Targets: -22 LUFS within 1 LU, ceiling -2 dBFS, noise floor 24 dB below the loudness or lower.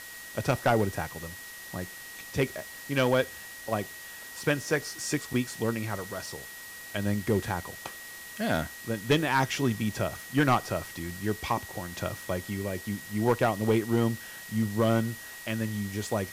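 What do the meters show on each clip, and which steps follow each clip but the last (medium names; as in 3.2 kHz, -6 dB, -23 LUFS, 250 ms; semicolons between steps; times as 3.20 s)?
steady tone 1.9 kHz; tone level -44 dBFS; noise floor -44 dBFS; noise floor target -54 dBFS; loudness -30.0 LUFS; peak level -14.5 dBFS; loudness target -22.0 LUFS
-> band-stop 1.9 kHz, Q 30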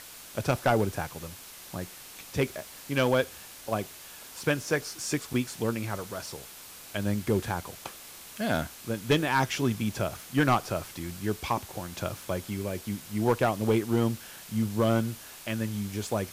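steady tone not found; noise floor -47 dBFS; noise floor target -54 dBFS
-> noise reduction 7 dB, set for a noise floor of -47 dBFS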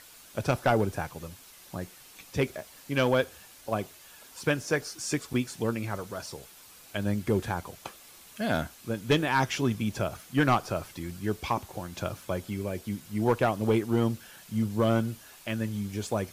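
noise floor -52 dBFS; noise floor target -54 dBFS
-> noise reduction 6 dB, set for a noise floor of -52 dBFS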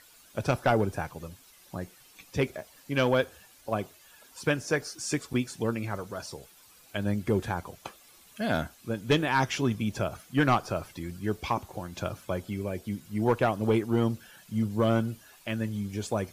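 noise floor -57 dBFS; loudness -30.0 LUFS; peak level -15.0 dBFS; loudness target -22.0 LUFS
-> trim +8 dB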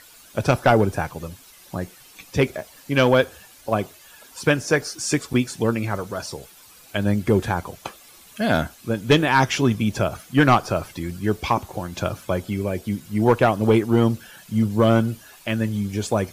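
loudness -22.0 LUFS; peak level -7.0 dBFS; noise floor -49 dBFS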